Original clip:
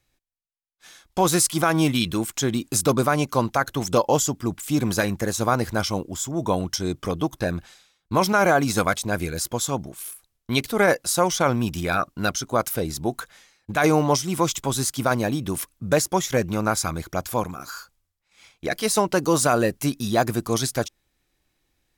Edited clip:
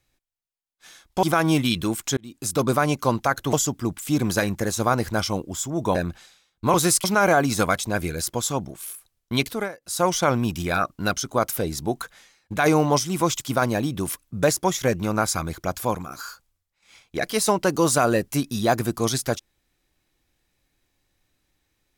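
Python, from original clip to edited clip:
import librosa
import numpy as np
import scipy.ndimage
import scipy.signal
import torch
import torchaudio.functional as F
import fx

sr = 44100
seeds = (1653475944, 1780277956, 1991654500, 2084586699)

y = fx.edit(x, sr, fx.move(start_s=1.23, length_s=0.3, to_s=8.22),
    fx.fade_in_span(start_s=2.47, length_s=0.56),
    fx.cut(start_s=3.83, length_s=0.31),
    fx.cut(start_s=6.56, length_s=0.87),
    fx.fade_down_up(start_s=10.64, length_s=0.6, db=-22.5, fade_s=0.26),
    fx.cut(start_s=14.59, length_s=0.31), tone=tone)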